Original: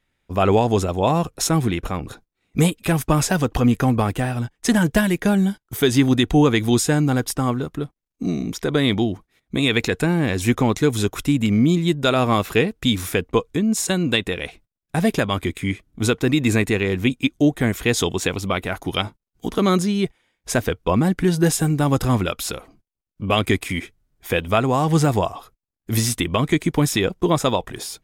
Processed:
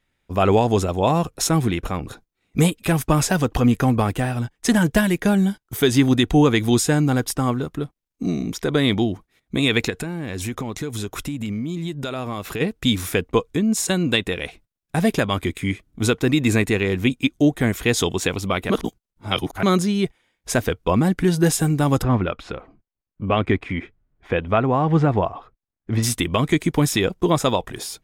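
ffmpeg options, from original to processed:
ffmpeg -i in.wav -filter_complex "[0:a]asplit=3[link_01][link_02][link_03];[link_01]afade=type=out:start_time=9.89:duration=0.02[link_04];[link_02]acompressor=threshold=-24dB:ratio=6:attack=3.2:release=140:knee=1:detection=peak,afade=type=in:start_time=9.89:duration=0.02,afade=type=out:start_time=12.6:duration=0.02[link_05];[link_03]afade=type=in:start_time=12.6:duration=0.02[link_06];[link_04][link_05][link_06]amix=inputs=3:normalize=0,asplit=3[link_07][link_08][link_09];[link_07]afade=type=out:start_time=22.02:duration=0.02[link_10];[link_08]lowpass=2100,afade=type=in:start_time=22.02:duration=0.02,afade=type=out:start_time=26.02:duration=0.02[link_11];[link_09]afade=type=in:start_time=26.02:duration=0.02[link_12];[link_10][link_11][link_12]amix=inputs=3:normalize=0,asplit=3[link_13][link_14][link_15];[link_13]atrim=end=18.702[link_16];[link_14]atrim=start=18.698:end=19.632,asetpts=PTS-STARTPTS,areverse[link_17];[link_15]atrim=start=19.628[link_18];[link_16][link_17]acrossfade=duration=0.004:curve1=hsin:curve2=hsin[link_19];[link_19][link_18]acrossfade=duration=0.004:curve1=hsin:curve2=hsin" out.wav

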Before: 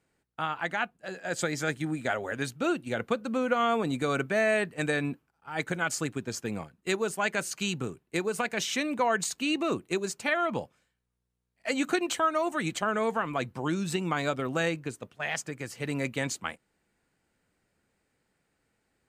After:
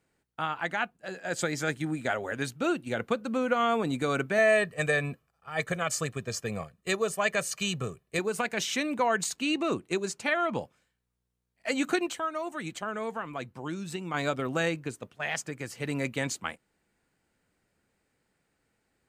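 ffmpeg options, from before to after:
ffmpeg -i in.wav -filter_complex "[0:a]asettb=1/sr,asplit=3[link_01][link_02][link_03];[link_01]atrim=end=4.384[link_04];[link_02]atrim=start=4.38:end=8.19,asetpts=PTS-STARTPTS,afade=type=in:duration=0.004:curve=qsin,afade=type=out:start_time=3.806:duration=0.004:curve=qsin,aecho=1:1:1.7:0.65,atrim=end_sample=168021[link_05];[link_03]atrim=start=8.186[link_06];[link_04][link_05]acrossfade=duration=0.004:curve1=hsin:curve2=qsin[link_07];[link_07][link_06]acrossfade=duration=0.004:curve1=qsin:curve2=hsin,asettb=1/sr,asplit=3[link_08][link_09][link_10];[link_08]atrim=end=9.364[link_11];[link_09]atrim=start=9.36:end=10.6,asetpts=PTS-STARTPTS,afade=type=in:duration=0.004:curve=qsin,afade=type=out:start_time=1.236:duration=0.004:curve=qsin,lowpass=11000[link_12];[link_10]atrim=start=10.596[link_13];[link_11][link_12]acrossfade=duration=0.004:curve1=hsin:curve2=qsin[link_14];[link_14][link_13]acrossfade=duration=0.004:curve1=qsin:curve2=hsin,asplit=3[link_15][link_16][link_17];[link_15]atrim=end=12.082[link_18];[link_16]atrim=start=12.078:end=14.142,asetpts=PTS-STARTPTS,volume=-6dB[link_19];[link_17]atrim=start=14.138[link_20];[link_18][link_19]acrossfade=duration=0.004:curve1=hsin:curve2=hsin[link_21];[link_21][link_20]acrossfade=duration=0.004:curve1=hsin:curve2=hsin" out.wav

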